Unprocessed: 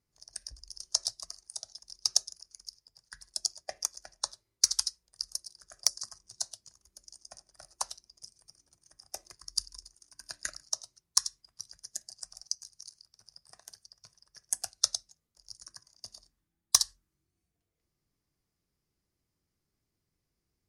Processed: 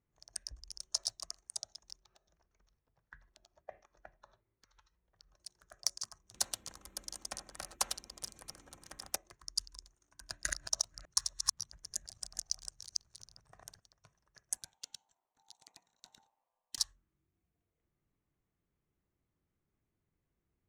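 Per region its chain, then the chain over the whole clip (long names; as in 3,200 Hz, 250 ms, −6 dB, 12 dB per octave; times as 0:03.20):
0:02.00–0:05.40: downward compressor 12 to 1, threshold −37 dBFS + high-frequency loss of the air 260 metres
0:06.34–0:09.16: comb filter 3.8 ms, depth 42% + every bin compressed towards the loudest bin 2 to 1
0:10.21–0:13.80: delay that plays each chunk backwards 281 ms, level −1.5 dB + low-shelf EQ 130 Hz +11 dB
0:14.57–0:16.78: downward compressor 3 to 1, threshold −41 dBFS + ring modulation 840 Hz
whole clip: adaptive Wiener filter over 9 samples; brickwall limiter −14 dBFS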